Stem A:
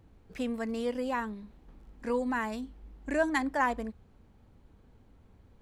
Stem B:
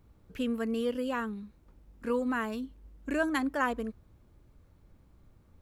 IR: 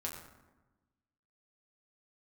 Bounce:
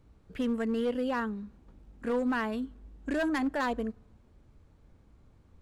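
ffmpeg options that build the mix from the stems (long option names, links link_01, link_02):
-filter_complex "[0:a]alimiter=level_in=1.5dB:limit=-24dB:level=0:latency=1,volume=-1.5dB,volume=-7dB[link_01];[1:a]lowpass=frequency=9000:width=0.5412,lowpass=frequency=9000:width=1.3066,volume=27dB,asoftclip=hard,volume=-27dB,volume=-1dB,asplit=2[link_02][link_03];[link_03]volume=-23.5dB[link_04];[2:a]atrim=start_sample=2205[link_05];[link_04][link_05]afir=irnorm=-1:irlink=0[link_06];[link_01][link_02][link_06]amix=inputs=3:normalize=0"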